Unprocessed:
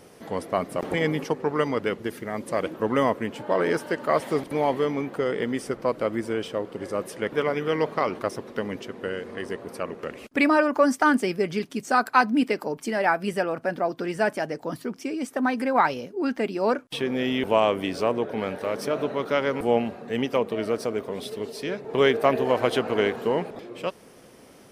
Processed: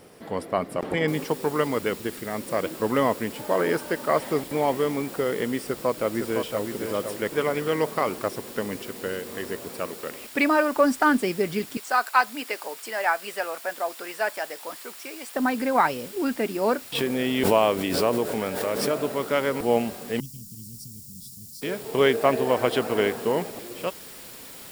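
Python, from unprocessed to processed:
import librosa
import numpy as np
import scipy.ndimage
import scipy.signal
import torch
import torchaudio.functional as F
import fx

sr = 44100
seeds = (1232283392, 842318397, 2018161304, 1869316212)

y = fx.noise_floor_step(x, sr, seeds[0], at_s=1.08, before_db=-67, after_db=-43, tilt_db=0.0)
y = fx.echo_throw(y, sr, start_s=5.63, length_s=1.02, ms=510, feedback_pct=30, wet_db=-6.0)
y = fx.low_shelf(y, sr, hz=200.0, db=-7.0, at=(9.87, 10.76))
y = fx.highpass(y, sr, hz=660.0, slope=12, at=(11.77, 15.35))
y = fx.pre_swell(y, sr, db_per_s=39.0, at=(16.95, 18.95))
y = fx.ellip_bandstop(y, sr, low_hz=160.0, high_hz=5600.0, order=3, stop_db=60, at=(20.2, 21.62))
y = fx.notch(y, sr, hz=6200.0, q=10.0)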